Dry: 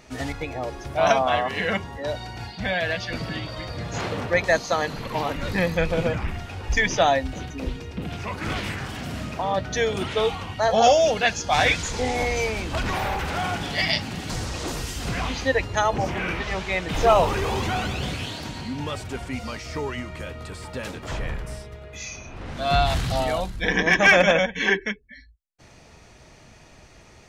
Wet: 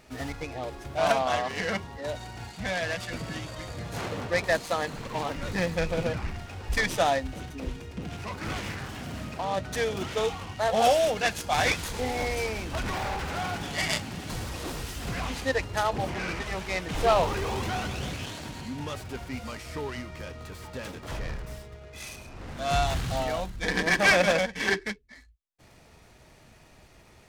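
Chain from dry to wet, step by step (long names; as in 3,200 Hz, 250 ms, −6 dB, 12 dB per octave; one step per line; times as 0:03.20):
short delay modulated by noise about 2,500 Hz, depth 0.03 ms
level −5 dB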